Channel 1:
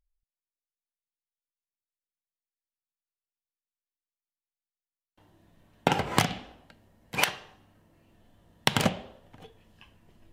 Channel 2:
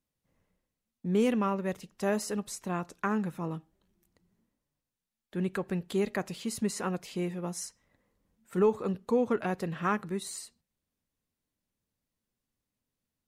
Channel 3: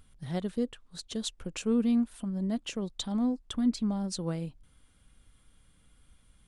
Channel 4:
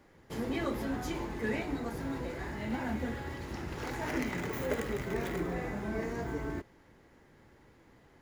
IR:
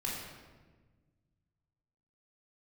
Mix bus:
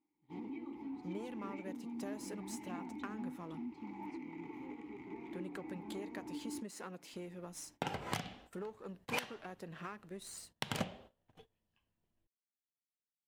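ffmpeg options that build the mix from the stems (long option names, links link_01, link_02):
-filter_complex "[0:a]adelay=1950,volume=-9.5dB[link_01];[1:a]aeval=exprs='if(lt(val(0),0),0.447*val(0),val(0))':channel_layout=same,highpass=160,acompressor=threshold=-38dB:ratio=5,volume=-5dB[link_02];[2:a]volume=-3dB[link_03];[3:a]volume=1.5dB[link_04];[link_03][link_04]amix=inputs=2:normalize=0,asplit=3[link_05][link_06][link_07];[link_05]bandpass=frequency=300:width_type=q:width=8,volume=0dB[link_08];[link_06]bandpass=frequency=870:width_type=q:width=8,volume=-6dB[link_09];[link_07]bandpass=frequency=2240:width_type=q:width=8,volume=-9dB[link_10];[link_08][link_09][link_10]amix=inputs=3:normalize=0,alimiter=level_in=13dB:limit=-24dB:level=0:latency=1:release=402,volume=-13dB,volume=0dB[link_11];[link_01][link_02]amix=inputs=2:normalize=0,alimiter=limit=-21.5dB:level=0:latency=1:release=296,volume=0dB[link_12];[link_11][link_12]amix=inputs=2:normalize=0,agate=range=-16dB:threshold=-58dB:ratio=16:detection=peak"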